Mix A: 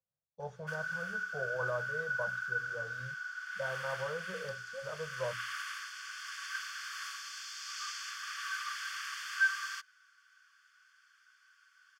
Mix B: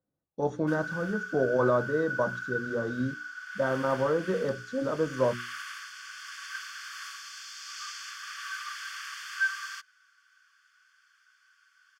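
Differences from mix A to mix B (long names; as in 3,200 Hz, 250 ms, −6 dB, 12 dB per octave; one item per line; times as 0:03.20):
speech +10.5 dB
master: remove Chebyshev band-stop filter 160–520 Hz, order 2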